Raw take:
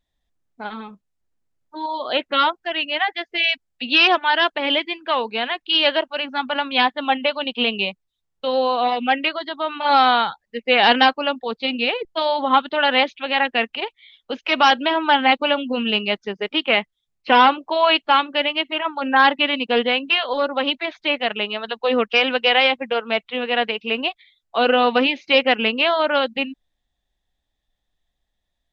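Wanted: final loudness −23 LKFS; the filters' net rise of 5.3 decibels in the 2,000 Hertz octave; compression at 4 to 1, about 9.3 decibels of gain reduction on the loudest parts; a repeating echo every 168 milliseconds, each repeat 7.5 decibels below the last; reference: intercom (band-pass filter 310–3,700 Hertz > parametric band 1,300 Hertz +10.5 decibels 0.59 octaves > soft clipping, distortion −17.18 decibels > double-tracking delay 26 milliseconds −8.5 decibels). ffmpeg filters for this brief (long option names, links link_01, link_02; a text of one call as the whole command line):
ffmpeg -i in.wav -filter_complex "[0:a]equalizer=frequency=2000:width_type=o:gain=3,acompressor=threshold=-20dB:ratio=4,highpass=310,lowpass=3700,equalizer=frequency=1300:width_type=o:width=0.59:gain=10.5,aecho=1:1:168|336|504|672|840:0.422|0.177|0.0744|0.0312|0.0131,asoftclip=threshold=-11.5dB,asplit=2[link_01][link_02];[link_02]adelay=26,volume=-8.5dB[link_03];[link_01][link_03]amix=inputs=2:normalize=0,volume=-1dB" out.wav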